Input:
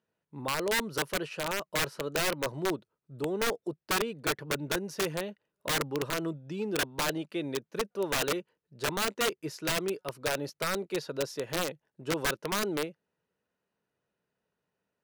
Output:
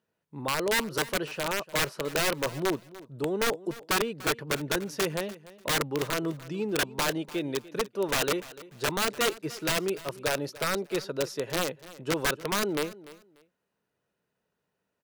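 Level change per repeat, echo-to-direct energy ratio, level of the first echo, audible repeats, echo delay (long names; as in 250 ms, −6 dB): −13.5 dB, −18.5 dB, −18.5 dB, 2, 294 ms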